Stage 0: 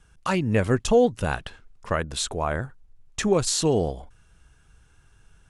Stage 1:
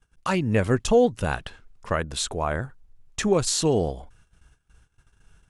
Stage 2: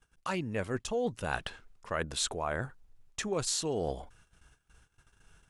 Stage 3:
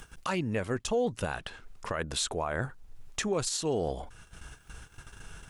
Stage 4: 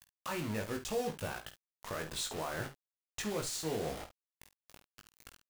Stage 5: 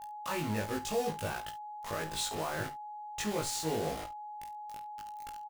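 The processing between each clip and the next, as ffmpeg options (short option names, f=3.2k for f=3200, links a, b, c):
-af "agate=range=-17dB:threshold=-54dB:ratio=16:detection=peak"
-af "areverse,acompressor=threshold=-28dB:ratio=6,areverse,lowshelf=f=220:g=-6.5"
-filter_complex "[0:a]asplit=2[a][b];[b]acompressor=mode=upward:threshold=-37dB:ratio=2.5,volume=2dB[c];[a][c]amix=inputs=2:normalize=0,alimiter=limit=-20.5dB:level=0:latency=1:release=208"
-af "acrusher=bits=5:mix=0:aa=0.000001,aecho=1:1:19|50|70:0.631|0.251|0.237,volume=-8.5dB"
-filter_complex "[0:a]aeval=exprs='val(0)+0.00562*sin(2*PI*840*n/s)':c=same,asplit=2[a][b];[b]adelay=19,volume=-5dB[c];[a][c]amix=inputs=2:normalize=0"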